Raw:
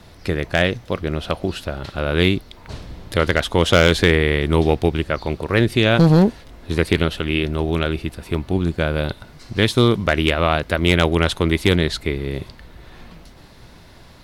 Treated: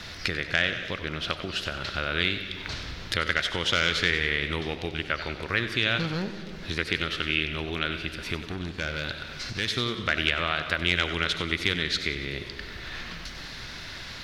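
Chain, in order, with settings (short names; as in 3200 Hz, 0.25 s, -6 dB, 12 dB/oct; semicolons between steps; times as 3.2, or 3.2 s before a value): digital reverb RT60 1.1 s, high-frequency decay 0.95×, pre-delay 25 ms, DRR 13 dB; compressor 2.5:1, threshold -37 dBFS, peak gain reduction 18.5 dB; 8.51–9.73 hard clip -29 dBFS, distortion -22 dB; band shelf 2900 Hz +12 dB 2.6 oct; warbling echo 94 ms, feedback 57%, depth 121 cents, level -12 dB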